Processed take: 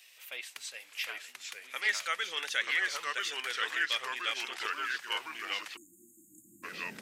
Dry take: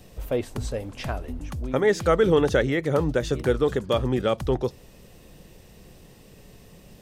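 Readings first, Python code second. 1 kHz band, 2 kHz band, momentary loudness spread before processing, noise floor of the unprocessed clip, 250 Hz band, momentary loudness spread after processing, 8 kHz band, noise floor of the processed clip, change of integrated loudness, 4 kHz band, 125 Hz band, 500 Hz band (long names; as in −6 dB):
−6.5 dB, +2.5 dB, 13 LU, −51 dBFS, −28.0 dB, 13 LU, +0.5 dB, −60 dBFS, −9.0 dB, +4.0 dB, below −35 dB, −26.0 dB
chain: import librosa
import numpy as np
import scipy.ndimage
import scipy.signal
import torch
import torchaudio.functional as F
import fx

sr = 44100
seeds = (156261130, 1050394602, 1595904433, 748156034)

y = fx.filter_sweep_highpass(x, sr, from_hz=2300.0, to_hz=230.0, start_s=5.28, end_s=6.89, q=2.0)
y = fx.echo_pitch(y, sr, ms=720, semitones=-2, count=3, db_per_echo=-3.0)
y = fx.spec_erase(y, sr, start_s=5.77, length_s=0.86, low_hz=350.0, high_hz=6500.0)
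y = F.gain(torch.from_numpy(y), -2.0).numpy()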